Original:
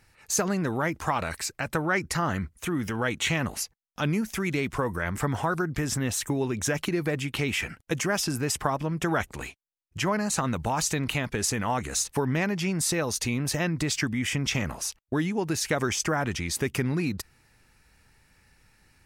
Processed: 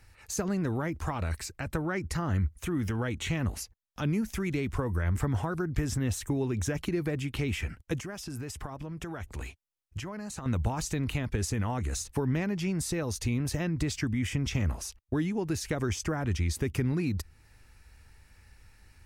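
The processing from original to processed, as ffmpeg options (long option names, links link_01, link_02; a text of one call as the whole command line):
ffmpeg -i in.wav -filter_complex "[0:a]asettb=1/sr,asplit=3[link_01][link_02][link_03];[link_01]atrim=end=8.004[link_04];[link_02]atrim=start=8:end=10.46,asetpts=PTS-STARTPTS,afade=type=in:duration=0.004:curve=qsin,afade=type=out:start_time=2.456:duration=0.004:curve=qsin,acompressor=threshold=-36dB:ratio=2.5:attack=3.2:release=140:knee=1:detection=peak[link_05];[link_03]atrim=start=10.456[link_06];[link_04][link_05]acrossfade=duration=0.004:curve1=hsin:curve2=qsin[link_07];[link_07][link_06]acrossfade=duration=0.004:curve1=qsin:curve2=hsin,lowshelf=frequency=110:width_type=q:width=1.5:gain=7.5,acrossover=split=390[link_08][link_09];[link_09]acompressor=threshold=-50dB:ratio=1.5[link_10];[link_08][link_10]amix=inputs=2:normalize=0" out.wav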